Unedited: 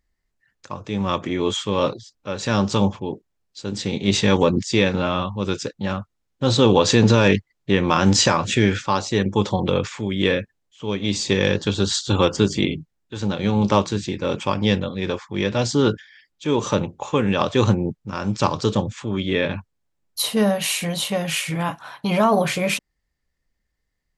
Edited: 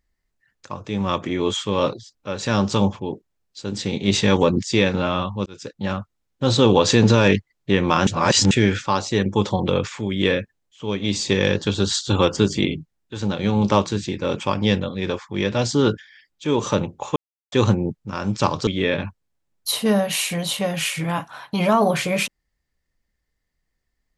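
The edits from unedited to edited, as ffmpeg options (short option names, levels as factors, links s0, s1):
-filter_complex "[0:a]asplit=7[s0][s1][s2][s3][s4][s5][s6];[s0]atrim=end=5.46,asetpts=PTS-STARTPTS,afade=t=out:st=5.456:d=0.004:c=hsin[s7];[s1]atrim=start=5.46:end=8.072,asetpts=PTS-STARTPTS,afade=t=in:d=0.39[s8];[s2]atrim=start=8.068:end=8.512,asetpts=PTS-STARTPTS,areverse[s9];[s3]atrim=start=8.508:end=17.16,asetpts=PTS-STARTPTS,afade=t=out:st=8.648:d=0.004:c=hsin[s10];[s4]atrim=start=17.16:end=17.52,asetpts=PTS-STARTPTS,volume=0[s11];[s5]atrim=start=17.52:end=18.672,asetpts=PTS-STARTPTS,afade=t=in:d=0.004:c=hsin[s12];[s6]atrim=start=19.178[s13];[s7][s8]concat=n=2:v=0:a=1[s14];[s14][s9]acrossfade=d=0.004:c1=hsin:c2=hsin[s15];[s10][s11][s12]concat=n=3:v=0:a=1[s16];[s15][s16]acrossfade=d=0.004:c1=hsin:c2=hsin[s17];[s17][s13]acrossfade=d=0.004:c1=hsin:c2=hsin"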